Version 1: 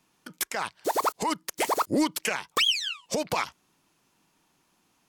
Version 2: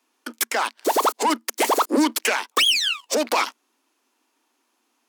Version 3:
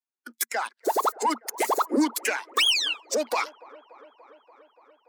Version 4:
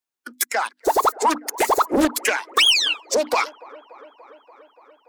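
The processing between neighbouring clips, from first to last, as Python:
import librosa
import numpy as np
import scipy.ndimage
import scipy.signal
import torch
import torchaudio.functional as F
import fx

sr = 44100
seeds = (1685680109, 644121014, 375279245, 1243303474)

y1 = fx.leveller(x, sr, passes=2)
y1 = scipy.signal.sosfilt(scipy.signal.cheby1(8, 1.0, 230.0, 'highpass', fs=sr, output='sos'), y1)
y1 = y1 * 10.0 ** (3.5 / 20.0)
y2 = fx.bin_expand(y1, sr, power=1.5)
y2 = fx.echo_wet_bandpass(y2, sr, ms=289, feedback_pct=75, hz=760.0, wet_db=-21)
y2 = y2 * 10.0 ** (-2.0 / 20.0)
y3 = fx.hum_notches(y2, sr, base_hz=50, count=6)
y3 = fx.doppler_dist(y3, sr, depth_ms=0.64)
y3 = y3 * 10.0 ** (6.0 / 20.0)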